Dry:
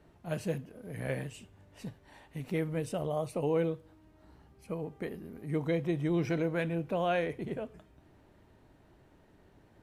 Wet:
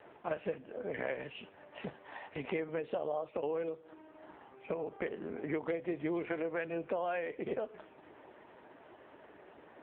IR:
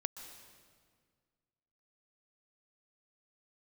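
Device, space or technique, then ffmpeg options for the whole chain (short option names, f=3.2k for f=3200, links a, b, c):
voicemail: -af "highpass=440,lowpass=3k,acompressor=threshold=-46dB:ratio=8,volume=14dB" -ar 8000 -c:a libopencore_amrnb -b:a 5900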